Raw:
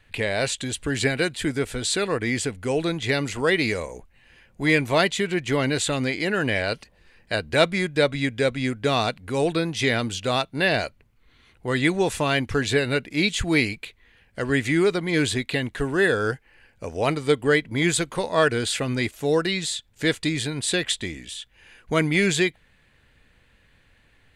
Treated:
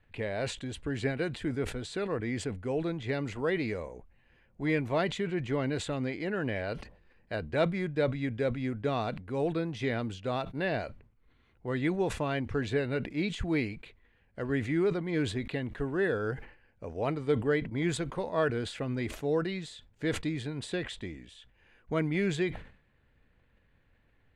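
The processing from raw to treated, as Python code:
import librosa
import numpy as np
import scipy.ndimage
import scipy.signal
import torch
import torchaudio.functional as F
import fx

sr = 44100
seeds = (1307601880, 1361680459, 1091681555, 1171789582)

y = fx.lowpass(x, sr, hz=1100.0, slope=6)
y = fx.sustainer(y, sr, db_per_s=110.0)
y = y * librosa.db_to_amplitude(-7.0)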